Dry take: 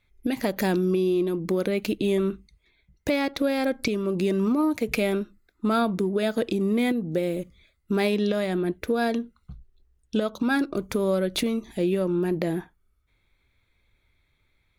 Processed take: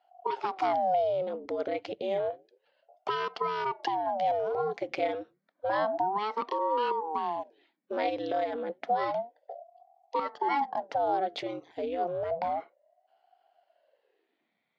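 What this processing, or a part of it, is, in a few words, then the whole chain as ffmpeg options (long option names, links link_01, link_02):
voice changer toy: -filter_complex "[0:a]aeval=exprs='val(0)*sin(2*PI*410*n/s+410*0.8/0.3*sin(2*PI*0.3*n/s))':channel_layout=same,highpass=490,equalizer=frequency=720:width_type=q:width=4:gain=6,equalizer=frequency=1200:width_type=q:width=4:gain=-5,equalizer=frequency=1700:width_type=q:width=4:gain=-4,equalizer=frequency=2600:width_type=q:width=4:gain=-8,equalizer=frequency=3900:width_type=q:width=4:gain=-7,lowpass=frequency=4300:width=0.5412,lowpass=frequency=4300:width=1.3066,asettb=1/sr,asplit=3[link_01][link_02][link_03];[link_01]atrim=end=11.634[link_04];[link_02]atrim=start=11.63:end=12.51,asetpts=PTS-STARTPTS,afade=type=in:duration=0.004:curve=qsin,afade=type=out:start_time=0.876:duration=0.004:curve=qsin,asubboost=boost=11:cutoff=150[link_05];[link_03]atrim=start=12.506[link_06];[link_04][link_05]acrossfade=duration=0.004:curve1=hsin:curve2=qsin[link_07];[link_07][link_06]acrossfade=duration=0.004:curve1=qsin:curve2=hsin"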